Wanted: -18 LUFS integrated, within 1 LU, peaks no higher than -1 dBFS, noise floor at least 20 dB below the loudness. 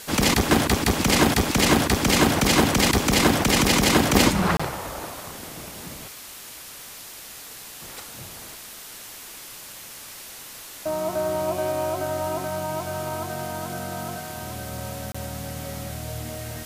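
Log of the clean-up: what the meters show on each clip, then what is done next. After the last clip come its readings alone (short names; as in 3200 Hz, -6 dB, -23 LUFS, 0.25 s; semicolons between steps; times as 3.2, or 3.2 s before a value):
dropouts 2; longest dropout 25 ms; noise floor -41 dBFS; noise floor target -43 dBFS; loudness -22.5 LUFS; peak -3.0 dBFS; loudness target -18.0 LUFS
-> interpolate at 4.57/15.12, 25 ms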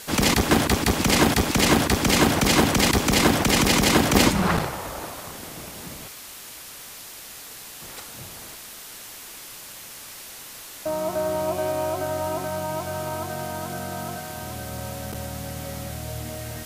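dropouts 0; noise floor -41 dBFS; noise floor target -43 dBFS
-> denoiser 6 dB, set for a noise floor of -41 dBFS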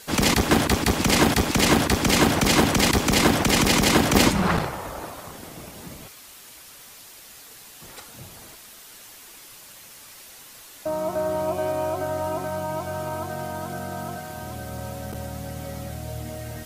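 noise floor -46 dBFS; loudness -22.0 LUFS; peak -3.0 dBFS; loudness target -18.0 LUFS
-> gain +4 dB; limiter -1 dBFS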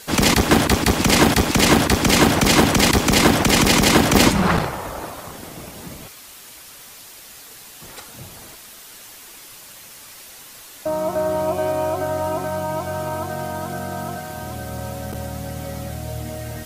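loudness -18.0 LUFS; peak -1.0 dBFS; noise floor -42 dBFS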